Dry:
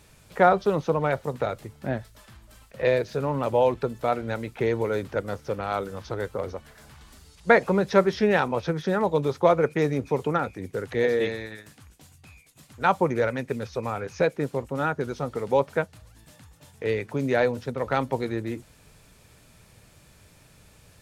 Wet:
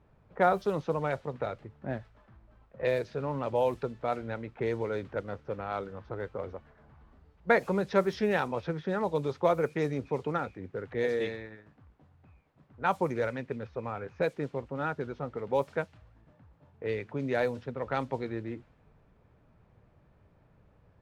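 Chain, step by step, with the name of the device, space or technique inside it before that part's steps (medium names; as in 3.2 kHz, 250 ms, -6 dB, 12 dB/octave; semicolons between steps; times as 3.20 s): cassette deck with a dynamic noise filter (white noise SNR 30 dB; level-controlled noise filter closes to 1 kHz, open at -16.5 dBFS); trim -6.5 dB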